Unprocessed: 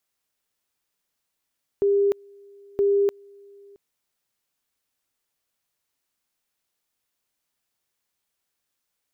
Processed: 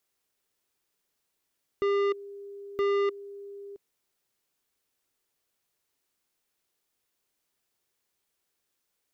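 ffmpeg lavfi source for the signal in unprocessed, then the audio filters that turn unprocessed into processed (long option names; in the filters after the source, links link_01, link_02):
-f lavfi -i "aevalsrc='pow(10,(-16.5-29*gte(mod(t,0.97),0.3))/20)*sin(2*PI*401*t)':duration=1.94:sample_rate=44100"
-af "equalizer=frequency=390:width=2.5:gain=6,asoftclip=type=tanh:threshold=-24.5dB"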